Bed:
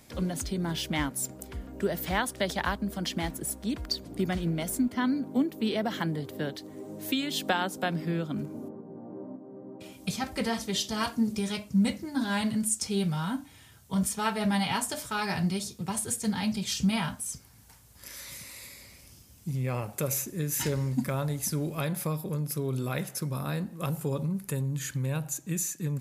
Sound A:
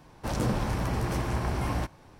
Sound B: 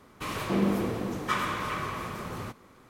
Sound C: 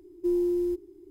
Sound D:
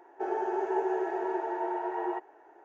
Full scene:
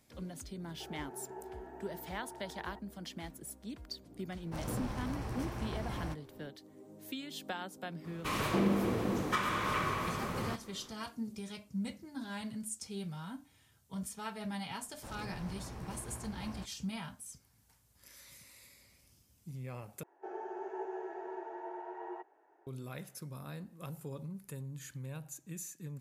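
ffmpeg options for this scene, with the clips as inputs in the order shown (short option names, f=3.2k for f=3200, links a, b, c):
-filter_complex "[4:a]asplit=2[a][b];[1:a]asplit=2[c][d];[0:a]volume=-13dB[e];[2:a]alimiter=limit=-19dB:level=0:latency=1:release=359[f];[d]alimiter=limit=-19.5dB:level=0:latency=1:release=216[g];[e]asplit=2[h][i];[h]atrim=end=20.034[j];[b]atrim=end=2.64,asetpts=PTS-STARTPTS,volume=-11.5dB[k];[i]atrim=start=22.666[l];[a]atrim=end=2.64,asetpts=PTS-STARTPTS,volume=-18dB,afade=t=in:d=0.004:c=hsin,afade=t=out:st=2.636:d=0.004:c=hsin,adelay=600[m];[c]atrim=end=2.19,asetpts=PTS-STARTPTS,volume=-10.5dB,afade=t=in:d=0.004:c=hsin,afade=t=out:st=2.186:d=0.004:c=hsin,adelay=4280[n];[f]atrim=end=2.89,asetpts=PTS-STARTPTS,volume=-0.5dB,afade=t=in:d=0.004:c=hsin,afade=t=out:st=2.886:d=0.004:c=hsin,adelay=8040[o];[g]atrim=end=2.19,asetpts=PTS-STARTPTS,volume=-16dB,afade=t=in:d=0.004:c=hsin,afade=t=out:st=2.186:d=0.004:c=hsin,adelay=14790[p];[j][k]acrossfade=d=0.004:c1=hsin:c2=hsin[q];[q][l]acrossfade=d=0.004:c1=hsin:c2=hsin[r];[r][m][n][o][p]amix=inputs=5:normalize=0"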